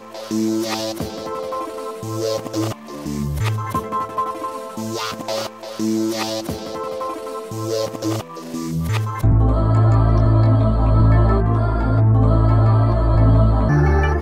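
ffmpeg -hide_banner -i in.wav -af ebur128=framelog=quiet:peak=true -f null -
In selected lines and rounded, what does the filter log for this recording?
Integrated loudness:
  I:         -19.3 LUFS
  Threshold: -29.4 LUFS
Loudness range:
  LRA:         9.0 LU
  Threshold: -39.7 LUFS
  LRA low:   -24.8 LUFS
  LRA high:  -15.8 LUFS
True peak:
  Peak:       -4.9 dBFS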